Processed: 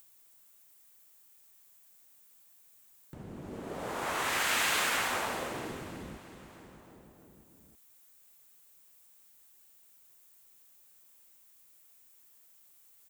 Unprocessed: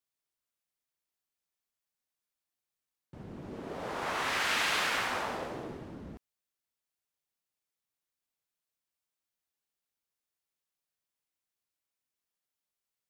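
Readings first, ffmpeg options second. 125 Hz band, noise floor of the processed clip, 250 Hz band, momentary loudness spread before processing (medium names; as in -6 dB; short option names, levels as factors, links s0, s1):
+0.5 dB, -61 dBFS, +0.5 dB, 19 LU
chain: -af "aexciter=amount=2.5:drive=5.5:freq=6900,aecho=1:1:316|632|948|1264|1580:0.251|0.131|0.0679|0.0353|0.0184,acompressor=mode=upward:threshold=0.00631:ratio=2.5"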